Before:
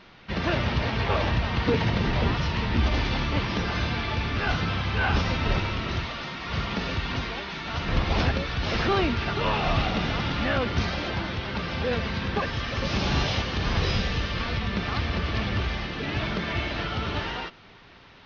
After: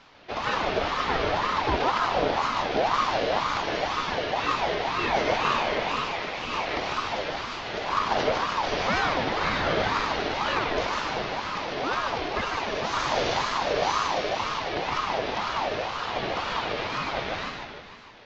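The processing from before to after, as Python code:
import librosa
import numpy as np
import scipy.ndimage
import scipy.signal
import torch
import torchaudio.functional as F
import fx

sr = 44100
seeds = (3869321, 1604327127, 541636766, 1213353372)

y = fx.peak_eq(x, sr, hz=1600.0, db=11.5, octaves=0.32, at=(5.27, 6.79))
y = fx.echo_feedback(y, sr, ms=151, feedback_pct=60, wet_db=-4)
y = fx.ring_lfo(y, sr, carrier_hz=840.0, swing_pct=40, hz=2.0)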